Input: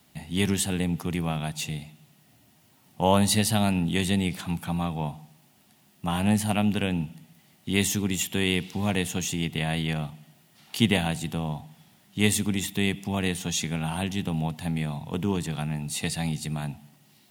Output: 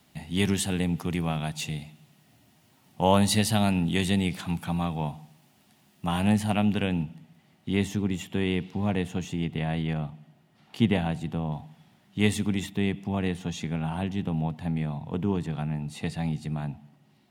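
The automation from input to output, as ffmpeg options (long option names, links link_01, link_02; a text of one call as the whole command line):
ffmpeg -i in.wav -af "asetnsamples=nb_out_samples=441:pad=0,asendcmd='6.32 lowpass f 3600;7.03 lowpass f 2100;7.75 lowpass f 1200;11.52 lowpass f 2500;12.69 lowpass f 1300',lowpass=frequency=7300:poles=1" out.wav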